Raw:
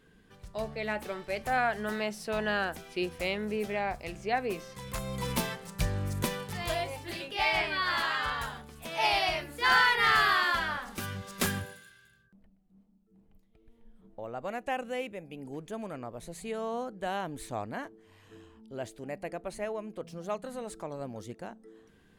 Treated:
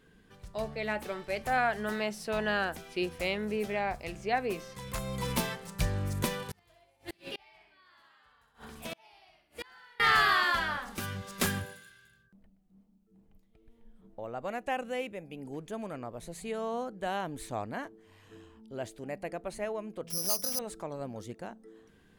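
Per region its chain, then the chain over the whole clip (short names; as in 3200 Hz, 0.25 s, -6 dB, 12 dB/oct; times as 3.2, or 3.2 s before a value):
6.36–10 feedback echo 64 ms, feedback 47%, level -6.5 dB + flipped gate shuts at -27 dBFS, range -33 dB
20.1–20.59 compressor 2:1, threshold -37 dBFS + careless resampling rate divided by 8×, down none, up zero stuff
whole clip: dry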